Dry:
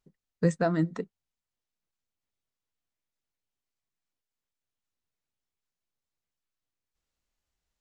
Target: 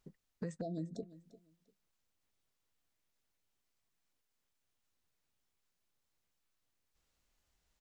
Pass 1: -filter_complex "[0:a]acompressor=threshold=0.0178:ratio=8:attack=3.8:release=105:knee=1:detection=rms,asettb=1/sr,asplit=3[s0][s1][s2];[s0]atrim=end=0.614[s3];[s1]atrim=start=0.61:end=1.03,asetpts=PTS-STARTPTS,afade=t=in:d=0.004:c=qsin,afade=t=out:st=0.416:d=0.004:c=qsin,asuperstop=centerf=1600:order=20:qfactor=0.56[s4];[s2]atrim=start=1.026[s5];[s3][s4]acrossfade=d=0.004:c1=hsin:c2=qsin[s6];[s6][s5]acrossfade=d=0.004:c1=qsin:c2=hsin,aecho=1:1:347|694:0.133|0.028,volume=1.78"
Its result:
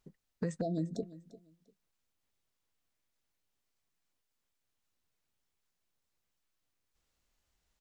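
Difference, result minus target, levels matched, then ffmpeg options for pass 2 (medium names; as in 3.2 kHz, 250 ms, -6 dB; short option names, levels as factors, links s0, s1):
compression: peak gain reduction -6 dB
-filter_complex "[0:a]acompressor=threshold=0.00794:ratio=8:attack=3.8:release=105:knee=1:detection=rms,asettb=1/sr,asplit=3[s0][s1][s2];[s0]atrim=end=0.614[s3];[s1]atrim=start=0.61:end=1.03,asetpts=PTS-STARTPTS,afade=t=in:d=0.004:c=qsin,afade=t=out:st=0.416:d=0.004:c=qsin,asuperstop=centerf=1600:order=20:qfactor=0.56[s4];[s2]atrim=start=1.026[s5];[s3][s4]acrossfade=d=0.004:c1=hsin:c2=qsin[s6];[s6][s5]acrossfade=d=0.004:c1=qsin:c2=hsin,aecho=1:1:347|694:0.133|0.028,volume=1.78"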